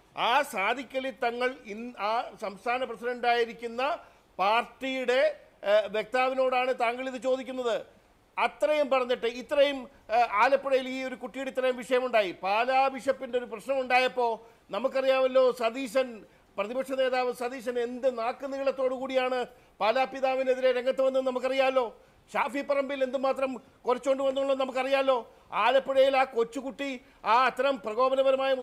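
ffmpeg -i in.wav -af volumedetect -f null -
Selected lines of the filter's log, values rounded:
mean_volume: -27.9 dB
max_volume: -11.9 dB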